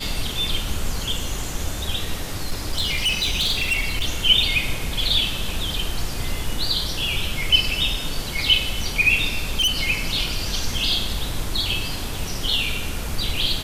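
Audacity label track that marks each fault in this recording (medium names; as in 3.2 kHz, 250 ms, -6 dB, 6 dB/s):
2.370000	4.060000	clipped -17 dBFS
9.380000	9.800000	clipped -16 dBFS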